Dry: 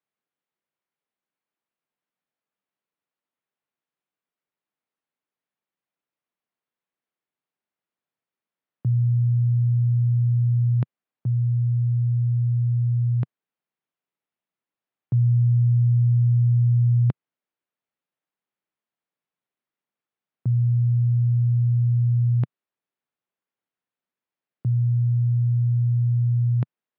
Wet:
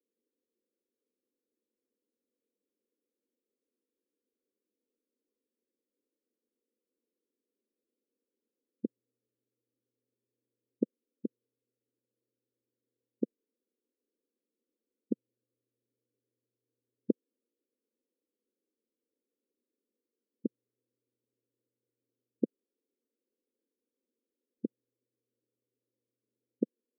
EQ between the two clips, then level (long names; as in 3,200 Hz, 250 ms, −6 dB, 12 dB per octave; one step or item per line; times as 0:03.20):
linear-phase brick-wall high-pass 210 Hz
elliptic low-pass filter 500 Hz
+12.0 dB